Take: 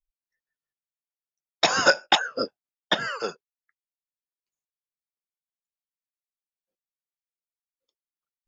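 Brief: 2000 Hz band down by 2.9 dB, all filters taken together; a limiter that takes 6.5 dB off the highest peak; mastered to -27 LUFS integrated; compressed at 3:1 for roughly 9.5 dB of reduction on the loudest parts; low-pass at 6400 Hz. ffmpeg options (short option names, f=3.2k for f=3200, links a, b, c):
-af "lowpass=6.4k,equalizer=f=2k:t=o:g=-4.5,acompressor=threshold=-27dB:ratio=3,volume=6.5dB,alimiter=limit=-12dB:level=0:latency=1"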